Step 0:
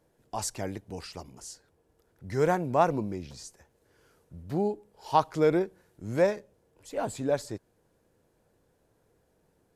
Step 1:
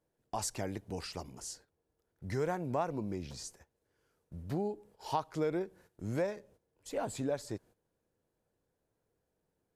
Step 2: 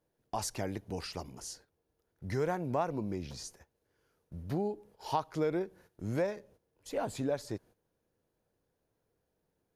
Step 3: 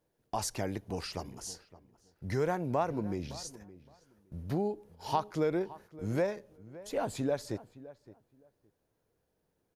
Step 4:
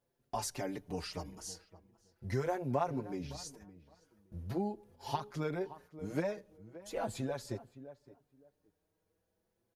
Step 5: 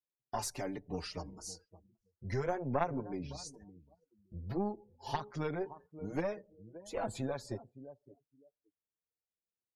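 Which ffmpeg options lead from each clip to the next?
ffmpeg -i in.wav -af "agate=range=-13dB:threshold=-55dB:ratio=16:detection=peak,acompressor=threshold=-33dB:ratio=3" out.wav
ffmpeg -i in.wav -af "equalizer=frequency=7800:width_type=o:width=0.21:gain=-7.5,volume=1.5dB" out.wav
ffmpeg -i in.wav -filter_complex "[0:a]asplit=2[link_01][link_02];[link_02]adelay=566,lowpass=frequency=1800:poles=1,volume=-17.5dB,asplit=2[link_03][link_04];[link_04]adelay=566,lowpass=frequency=1800:poles=1,volume=0.19[link_05];[link_01][link_03][link_05]amix=inputs=3:normalize=0,volume=1.5dB" out.wav
ffmpeg -i in.wav -filter_complex "[0:a]asplit=2[link_01][link_02];[link_02]adelay=5.4,afreqshift=0.4[link_03];[link_01][link_03]amix=inputs=2:normalize=1" out.wav
ffmpeg -i in.wav -af "aeval=exprs='0.106*(cos(1*acos(clip(val(0)/0.106,-1,1)))-cos(1*PI/2))+0.0376*(cos(2*acos(clip(val(0)/0.106,-1,1)))-cos(2*PI/2))':channel_layout=same,afftdn=noise_reduction=26:noise_floor=-56" out.wav

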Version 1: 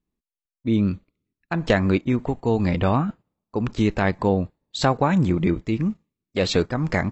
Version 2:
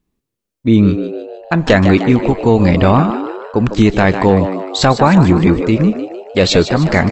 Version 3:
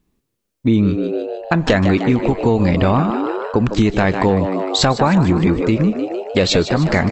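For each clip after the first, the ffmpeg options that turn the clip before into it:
ffmpeg -i in.wav -filter_complex "[0:a]asplit=7[link_01][link_02][link_03][link_04][link_05][link_06][link_07];[link_02]adelay=152,afreqshift=91,volume=-11dB[link_08];[link_03]adelay=304,afreqshift=182,volume=-16.4dB[link_09];[link_04]adelay=456,afreqshift=273,volume=-21.7dB[link_10];[link_05]adelay=608,afreqshift=364,volume=-27.1dB[link_11];[link_06]adelay=760,afreqshift=455,volume=-32.4dB[link_12];[link_07]adelay=912,afreqshift=546,volume=-37.8dB[link_13];[link_01][link_08][link_09][link_10][link_11][link_12][link_13]amix=inputs=7:normalize=0,apsyclip=12dB,volume=-1.5dB" out.wav
ffmpeg -i in.wav -af "acompressor=threshold=-20dB:ratio=2.5,volume=4.5dB" out.wav

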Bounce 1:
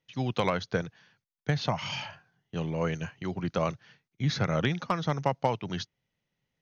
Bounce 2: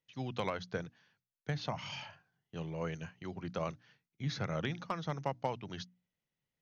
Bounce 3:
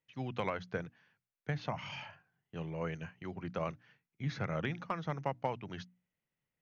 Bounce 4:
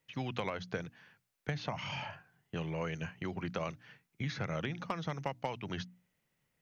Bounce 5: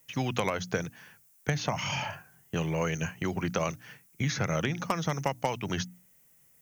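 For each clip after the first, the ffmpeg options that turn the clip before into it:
ffmpeg -i in.wav -af "bandreject=frequency=60:width_type=h:width=6,bandreject=frequency=120:width_type=h:width=6,bandreject=frequency=180:width_type=h:width=6,bandreject=frequency=240:width_type=h:width=6,bandreject=frequency=300:width_type=h:width=6,volume=-8.5dB" out.wav
ffmpeg -i in.wav -af "highshelf=frequency=3100:width_type=q:width=1.5:gain=-6" out.wav
ffmpeg -i in.wav -filter_complex "[0:a]acrossover=split=1100|2700[link_01][link_02][link_03];[link_01]acompressor=threshold=-46dB:ratio=4[link_04];[link_02]acompressor=threshold=-57dB:ratio=4[link_05];[link_03]acompressor=threshold=-55dB:ratio=4[link_06];[link_04][link_05][link_06]amix=inputs=3:normalize=0,volume=9.5dB" out.wav
ffmpeg -i in.wav -af "aexciter=amount=5.6:drive=3.5:freq=5800,volume=7.5dB" out.wav

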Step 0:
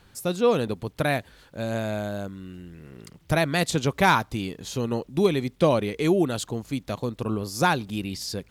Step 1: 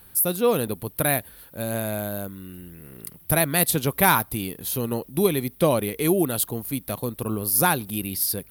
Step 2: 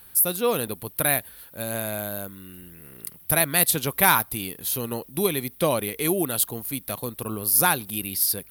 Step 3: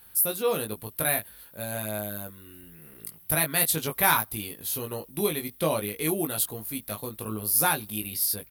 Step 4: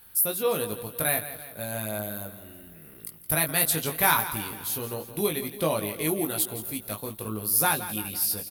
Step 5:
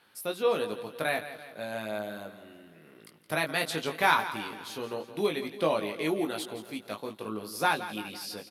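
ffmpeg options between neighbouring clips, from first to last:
ffmpeg -i in.wav -af "aexciter=amount=10:drive=8.7:freq=10000" out.wav
ffmpeg -i in.wav -af "tiltshelf=frequency=760:gain=-3.5,volume=-1.5dB" out.wav
ffmpeg -i in.wav -filter_complex "[0:a]asplit=2[link_01][link_02];[link_02]adelay=19,volume=-4dB[link_03];[link_01][link_03]amix=inputs=2:normalize=0,volume=-5dB" out.wav
ffmpeg -i in.wav -af "aecho=1:1:169|338|507|676|845|1014:0.224|0.121|0.0653|0.0353|0.019|0.0103" out.wav
ffmpeg -i in.wav -af "highpass=230,lowpass=4400" out.wav

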